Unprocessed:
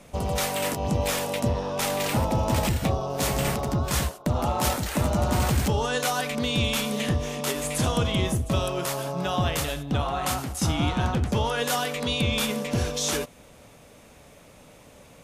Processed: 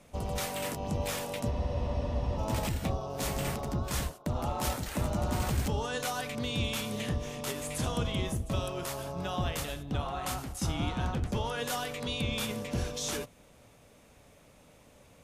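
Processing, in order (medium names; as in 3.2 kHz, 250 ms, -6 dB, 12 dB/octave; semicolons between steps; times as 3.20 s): octave divider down 1 oct, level -5 dB; spectral freeze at 1.54 s, 0.84 s; trim -8 dB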